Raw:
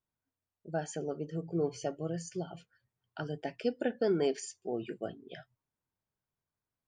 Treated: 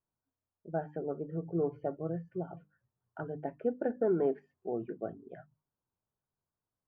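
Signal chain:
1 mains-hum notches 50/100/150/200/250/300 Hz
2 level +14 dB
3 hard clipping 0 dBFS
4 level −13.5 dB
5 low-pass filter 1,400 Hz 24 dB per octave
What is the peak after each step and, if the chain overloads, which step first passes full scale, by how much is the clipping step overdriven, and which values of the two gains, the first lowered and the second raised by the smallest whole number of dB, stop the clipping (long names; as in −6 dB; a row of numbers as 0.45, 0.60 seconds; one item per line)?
−19.0, −5.0, −5.0, −18.5, −19.0 dBFS
no step passes full scale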